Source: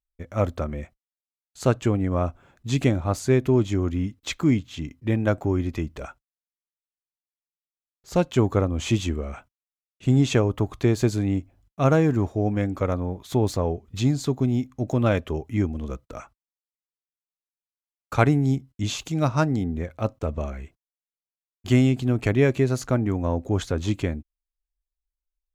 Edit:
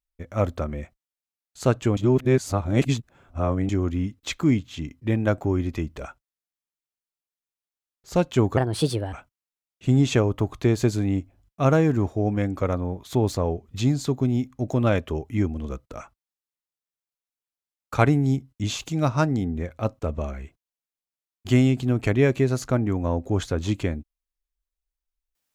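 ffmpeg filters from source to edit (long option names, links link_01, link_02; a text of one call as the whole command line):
ffmpeg -i in.wav -filter_complex "[0:a]asplit=5[link_01][link_02][link_03][link_04][link_05];[link_01]atrim=end=1.972[link_06];[link_02]atrim=start=1.968:end=3.692,asetpts=PTS-STARTPTS,areverse[link_07];[link_03]atrim=start=3.688:end=8.574[link_08];[link_04]atrim=start=8.57:end=9.32,asetpts=PTS-STARTPTS,asetrate=59535,aresample=44100[link_09];[link_05]atrim=start=9.316[link_10];[link_06][link_07]acrossfade=duration=0.004:curve1=hsin:curve2=hsin[link_11];[link_11][link_08]acrossfade=duration=0.004:curve1=hsin:curve2=hsin[link_12];[link_12][link_09]acrossfade=duration=0.004:curve1=hsin:curve2=hsin[link_13];[link_13][link_10]acrossfade=duration=0.004:curve1=hsin:curve2=hsin" out.wav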